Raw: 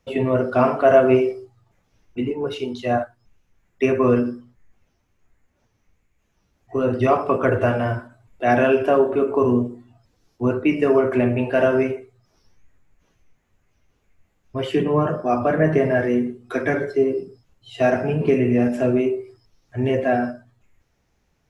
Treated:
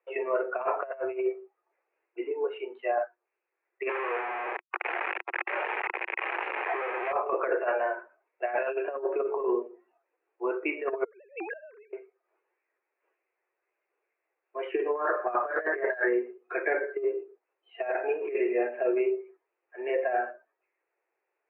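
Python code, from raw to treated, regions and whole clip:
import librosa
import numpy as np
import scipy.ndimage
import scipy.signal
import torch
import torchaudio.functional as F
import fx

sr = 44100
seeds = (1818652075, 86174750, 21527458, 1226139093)

y = fx.chain(x, sr, fx.clip_1bit(),
    fx.highpass(hz=280.0, slope=12),
    fx.env_flatten(amount_pct=70), at=(3.89, 7.13))
y = fx.chain(y, sr, fx.sine_speech(),
    fx.highpass(hz=390.0, slope=12),
    fx.gate_flip(shuts_db=-20.0, range_db=-24), at=(11.04, 11.93))
y = fx.chain(y, sr, fx.law_mismatch(coded='mu'),
    fx.lowpass_res(hz=1600.0, q=3.4), at=(14.95, 16.13))
y = fx.noise_reduce_blind(y, sr, reduce_db=6)
y = scipy.signal.sosfilt(scipy.signal.cheby1(5, 1.0, [350.0, 2600.0], 'bandpass', fs=sr, output='sos'), y)
y = fx.over_compress(y, sr, threshold_db=-22.0, ratio=-0.5)
y = y * 10.0 ** (-4.5 / 20.0)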